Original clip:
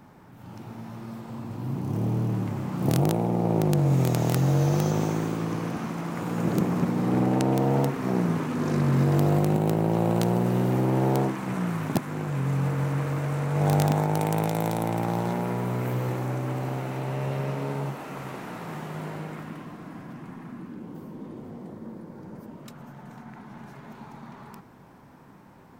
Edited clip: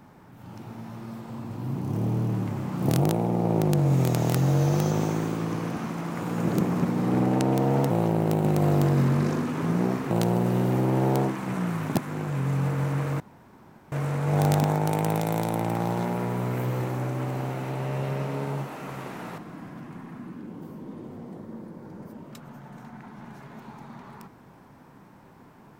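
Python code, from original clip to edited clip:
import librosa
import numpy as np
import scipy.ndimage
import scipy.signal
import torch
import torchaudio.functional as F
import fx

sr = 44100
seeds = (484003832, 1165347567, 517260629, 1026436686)

y = fx.edit(x, sr, fx.reverse_span(start_s=7.9, length_s=2.21),
    fx.insert_room_tone(at_s=13.2, length_s=0.72),
    fx.cut(start_s=18.66, length_s=1.05), tone=tone)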